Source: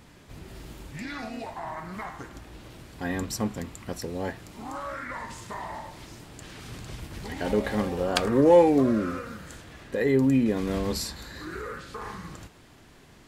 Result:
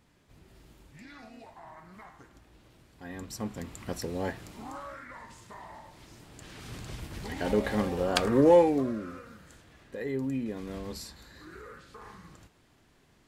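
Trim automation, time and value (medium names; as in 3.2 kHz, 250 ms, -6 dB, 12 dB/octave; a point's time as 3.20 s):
3.03 s -13 dB
3.83 s -1 dB
4.46 s -1 dB
5.06 s -10 dB
5.82 s -10 dB
6.75 s -1.5 dB
8.49 s -1.5 dB
9.00 s -10.5 dB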